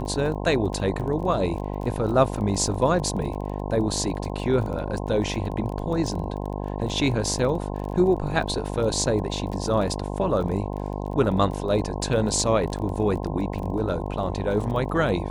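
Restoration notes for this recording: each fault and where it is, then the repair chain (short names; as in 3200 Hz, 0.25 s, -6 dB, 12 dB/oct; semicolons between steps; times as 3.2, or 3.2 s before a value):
buzz 50 Hz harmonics 21 -30 dBFS
crackle 22/s -32 dBFS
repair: de-click; de-hum 50 Hz, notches 21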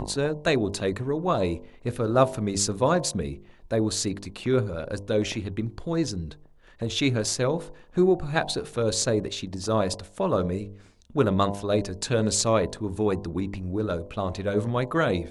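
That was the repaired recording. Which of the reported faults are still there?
none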